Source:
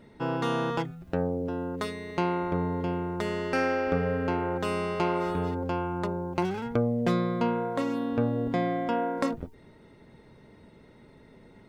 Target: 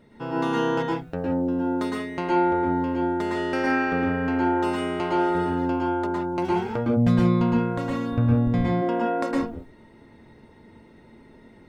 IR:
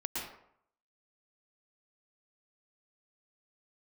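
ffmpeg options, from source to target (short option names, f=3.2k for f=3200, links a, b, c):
-filter_complex "[1:a]atrim=start_sample=2205,afade=t=out:st=0.24:d=0.01,atrim=end_sample=11025[a];[0:a][a]afir=irnorm=-1:irlink=0,asplit=3[b][c][d];[b]afade=t=out:st=6.96:d=0.02[e];[c]asubboost=boost=11:cutoff=110,afade=t=in:st=6.96:d=0.02,afade=t=out:st=8.81:d=0.02[f];[d]afade=t=in:st=8.81:d=0.02[g];[e][f][g]amix=inputs=3:normalize=0"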